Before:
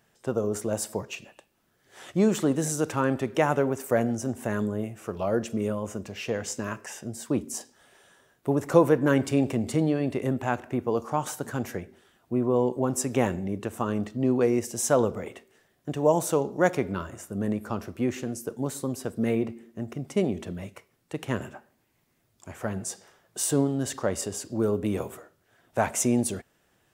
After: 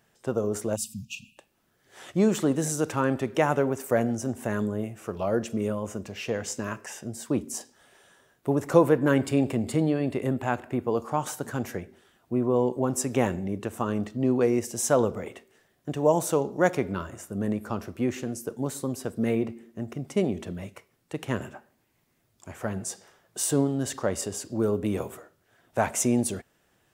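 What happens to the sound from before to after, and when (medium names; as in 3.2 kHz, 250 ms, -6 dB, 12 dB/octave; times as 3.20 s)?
0.76–1.37 s: spectral selection erased 260–2400 Hz
8.86–11.15 s: band-stop 5.9 kHz, Q 6.3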